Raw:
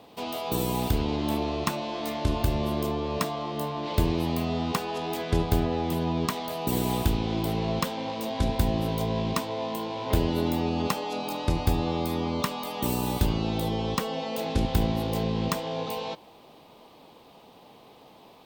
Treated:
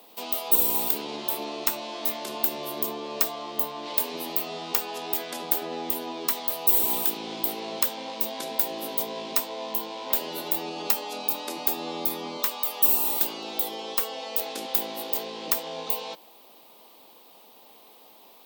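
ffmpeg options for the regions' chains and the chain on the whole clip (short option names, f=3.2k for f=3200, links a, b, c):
-filter_complex "[0:a]asettb=1/sr,asplit=3[a][b][c];[a]atrim=end=12.374[d];[b]atrim=start=12.37:end=15.48,asetpts=PTS-STARTPTS,afade=t=in:d=0.004:c=qsin,afade=t=out:st=3.106:d=0.004:c=qsin,highpass=320,aeval=exprs='clip(val(0),-1,0.0794)':c=same[e];[c]atrim=start=15.476[f];[d][e]acrossfade=d=0.004:c1=hsin:c2=qsin[g];[g][f]acrossfade=d=0.004:c1=qsin:c2=hsin,afftfilt=real='re*lt(hypot(re,im),0.282)':imag='im*lt(hypot(re,im),0.282)':win_size=1024:overlap=0.75,highpass=f=180:w=0.5412,highpass=f=180:w=1.3066,aemphasis=mode=production:type=bsi,volume=-2.5dB"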